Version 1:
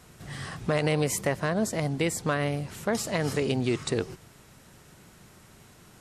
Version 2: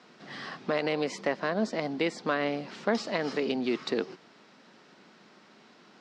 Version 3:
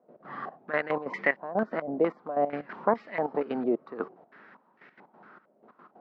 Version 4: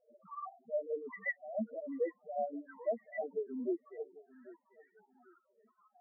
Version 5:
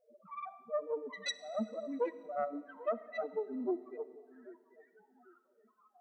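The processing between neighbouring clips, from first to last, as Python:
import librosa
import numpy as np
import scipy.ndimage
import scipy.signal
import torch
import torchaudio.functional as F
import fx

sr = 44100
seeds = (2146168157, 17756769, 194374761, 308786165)

y1 = scipy.signal.sosfilt(scipy.signal.ellip(3, 1.0, 60, [220.0, 4900.0], 'bandpass', fs=sr, output='sos'), x)
y1 = fx.rider(y1, sr, range_db=10, speed_s=0.5)
y2 = fx.low_shelf(y1, sr, hz=140.0, db=-3.5)
y2 = fx.step_gate(y2, sr, bpm=184, pattern='.x.xxx...x', floor_db=-12.0, edge_ms=4.5)
y2 = fx.filter_held_lowpass(y2, sr, hz=4.4, low_hz=600.0, high_hz=2000.0)
y3 = fx.spec_topn(y2, sr, count=2)
y3 = fx.rider(y3, sr, range_db=4, speed_s=0.5)
y3 = fx.echo_feedback(y3, sr, ms=792, feedback_pct=29, wet_db=-19.0)
y3 = y3 * librosa.db_to_amplitude(-4.0)
y4 = fx.self_delay(y3, sr, depth_ms=0.2)
y4 = fx.rev_freeverb(y4, sr, rt60_s=2.0, hf_ratio=1.0, predelay_ms=0, drr_db=15.5)
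y4 = y4 * librosa.db_to_amplitude(1.0)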